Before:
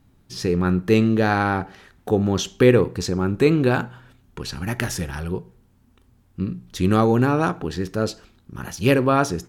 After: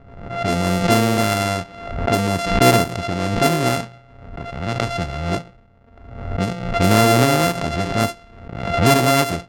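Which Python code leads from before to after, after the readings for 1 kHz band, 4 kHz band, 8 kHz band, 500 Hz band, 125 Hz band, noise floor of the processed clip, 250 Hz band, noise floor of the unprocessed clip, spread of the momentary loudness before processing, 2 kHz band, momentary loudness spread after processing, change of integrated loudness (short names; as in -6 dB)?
+6.0 dB, +8.0 dB, +7.5 dB, +1.0 dB, +2.5 dB, -48 dBFS, 0.0 dB, -59 dBFS, 15 LU, +4.5 dB, 15 LU, +2.5 dB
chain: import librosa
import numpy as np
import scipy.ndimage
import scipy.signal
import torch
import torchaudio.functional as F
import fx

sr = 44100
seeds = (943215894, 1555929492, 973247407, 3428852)

y = np.r_[np.sort(x[:len(x) // 64 * 64].reshape(-1, 64), axis=1).ravel(), x[len(x) // 64 * 64:]]
y = fx.rider(y, sr, range_db=4, speed_s=2.0)
y = fx.env_lowpass(y, sr, base_hz=1700.0, full_db=-15.0)
y = fx.pre_swell(y, sr, db_per_s=60.0)
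y = y * 10.0 ** (1.5 / 20.0)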